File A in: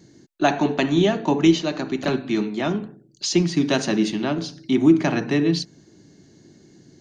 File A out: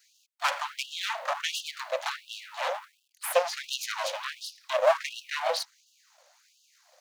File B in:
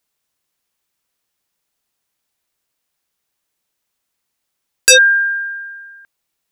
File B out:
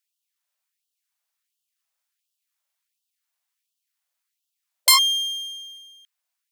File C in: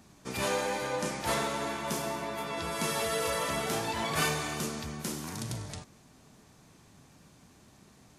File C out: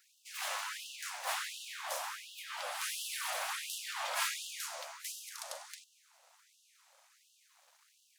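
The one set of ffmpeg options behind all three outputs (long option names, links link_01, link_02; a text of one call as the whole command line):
ffmpeg -i in.wav -filter_complex "[0:a]acrossover=split=250|690|2000[link_01][link_02][link_03][link_04];[link_01]dynaudnorm=framelen=230:gausssize=11:maxgain=14dB[link_05];[link_02]acrusher=bits=9:mix=0:aa=0.000001[link_06];[link_05][link_06][link_03][link_04]amix=inputs=4:normalize=0,aeval=exprs='abs(val(0))':channel_layout=same,afftfilt=real='re*gte(b*sr/1024,500*pow(2700/500,0.5+0.5*sin(2*PI*1.4*pts/sr)))':imag='im*gte(b*sr/1024,500*pow(2700/500,0.5+0.5*sin(2*PI*1.4*pts/sr)))':win_size=1024:overlap=0.75,volume=-2.5dB" out.wav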